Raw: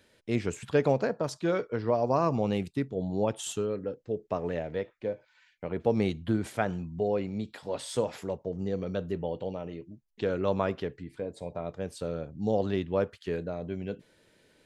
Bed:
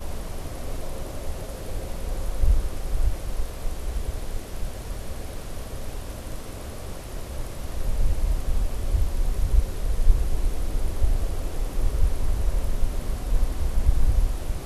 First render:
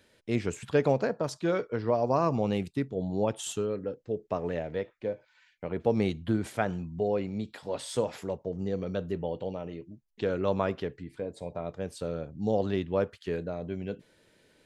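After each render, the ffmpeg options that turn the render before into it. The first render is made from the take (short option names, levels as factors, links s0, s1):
-af anull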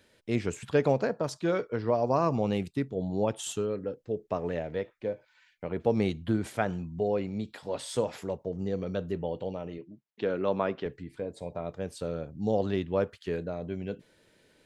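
-filter_complex "[0:a]asettb=1/sr,asplit=3[s0][s1][s2];[s0]atrim=end=9.784[s3];[s1]atrim=start=9.78:end=10.86,asetpts=PTS-STARTPTS,afade=t=in:d=0.004:c=qsin,afade=t=out:st=1.076:d=0.004:c=qsin,highpass=160,lowpass=4000[s4];[s2]atrim=start=10.856[s5];[s3][s4]acrossfade=d=0.004:c1=hsin:c2=qsin[s6];[s6][s5]acrossfade=d=0.004:c1=qsin:c2=hsin"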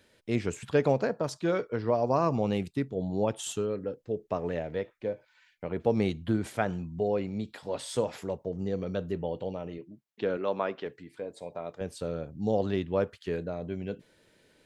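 -filter_complex "[0:a]asettb=1/sr,asplit=3[s0][s1][s2];[s0]atrim=end=10.374[s3];[s1]atrim=start=10.37:end=11.81,asetpts=PTS-STARTPTS,afade=t=in:d=0.004:c=qsin,afade=t=out:st=1.436:d=0.004:c=qsin,highpass=f=360:p=1[s4];[s2]atrim=start=11.806[s5];[s3][s4]acrossfade=d=0.004:c1=hsin:c2=qsin[s6];[s6][s5]acrossfade=d=0.004:c1=qsin:c2=hsin"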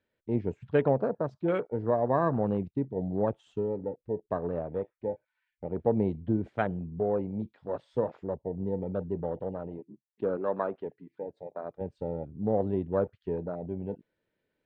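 -af "lowpass=2600,afwtdn=0.0158"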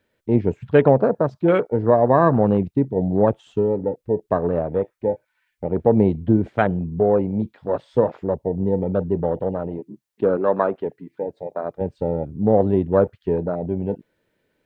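-af "volume=3.55,alimiter=limit=0.708:level=0:latency=1"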